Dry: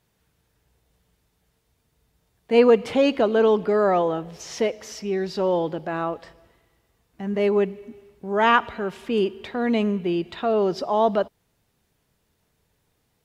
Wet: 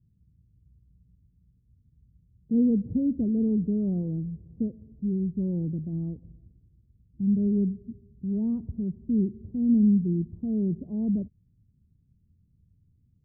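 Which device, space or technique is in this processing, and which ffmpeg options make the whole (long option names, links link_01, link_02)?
the neighbour's flat through the wall: -af "lowpass=frequency=220:width=0.5412,lowpass=frequency=220:width=1.3066,equalizer=frequency=88:width_type=o:width=0.89:gain=6.5,volume=6dB"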